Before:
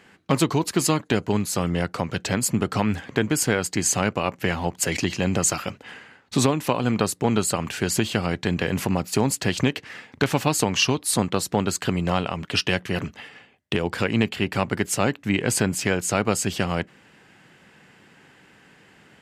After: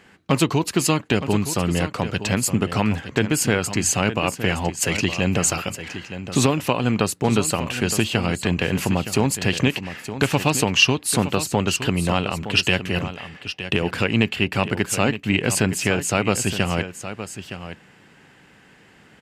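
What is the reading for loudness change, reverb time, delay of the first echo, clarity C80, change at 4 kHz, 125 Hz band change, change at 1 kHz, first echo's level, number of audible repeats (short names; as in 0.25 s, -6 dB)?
+2.5 dB, none, 0.916 s, none, +4.0 dB, +3.0 dB, +1.5 dB, -11.5 dB, 1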